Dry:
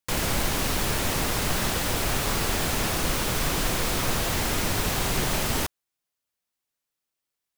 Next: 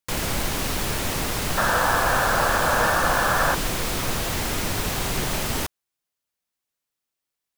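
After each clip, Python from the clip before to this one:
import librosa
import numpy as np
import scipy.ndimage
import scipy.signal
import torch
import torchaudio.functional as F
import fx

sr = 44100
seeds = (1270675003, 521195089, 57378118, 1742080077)

y = fx.spec_paint(x, sr, seeds[0], shape='noise', start_s=1.57, length_s=1.98, low_hz=470.0, high_hz=1800.0, level_db=-22.0)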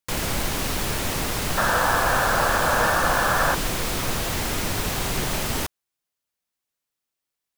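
y = x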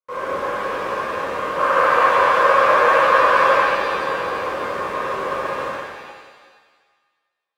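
y = fx.tracing_dist(x, sr, depth_ms=0.27)
y = fx.double_bandpass(y, sr, hz=770.0, octaves=1.0)
y = fx.rev_shimmer(y, sr, seeds[1], rt60_s=1.5, semitones=7, shimmer_db=-8, drr_db=-10.5)
y = F.gain(torch.from_numpy(y), 3.5).numpy()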